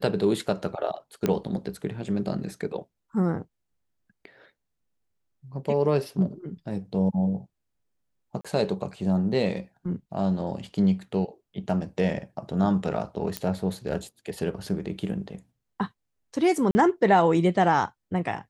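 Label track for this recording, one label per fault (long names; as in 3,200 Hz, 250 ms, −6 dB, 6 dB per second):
1.260000	1.260000	click −11 dBFS
8.410000	8.450000	drop-out 36 ms
13.370000	13.370000	click −11 dBFS
16.710000	16.750000	drop-out 40 ms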